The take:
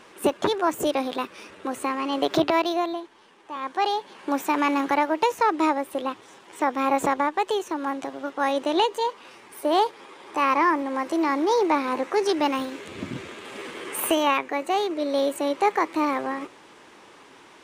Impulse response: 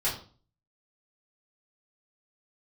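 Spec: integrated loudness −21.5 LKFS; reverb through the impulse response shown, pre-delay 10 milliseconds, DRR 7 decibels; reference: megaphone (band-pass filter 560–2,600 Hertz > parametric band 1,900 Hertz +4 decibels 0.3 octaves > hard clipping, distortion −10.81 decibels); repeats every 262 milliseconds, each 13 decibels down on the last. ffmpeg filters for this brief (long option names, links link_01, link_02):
-filter_complex "[0:a]aecho=1:1:262|524|786:0.224|0.0493|0.0108,asplit=2[link_01][link_02];[1:a]atrim=start_sample=2205,adelay=10[link_03];[link_02][link_03]afir=irnorm=-1:irlink=0,volume=-15.5dB[link_04];[link_01][link_04]amix=inputs=2:normalize=0,highpass=560,lowpass=2600,equalizer=frequency=1900:width_type=o:width=0.3:gain=4,asoftclip=type=hard:threshold=-21dB,volume=6.5dB"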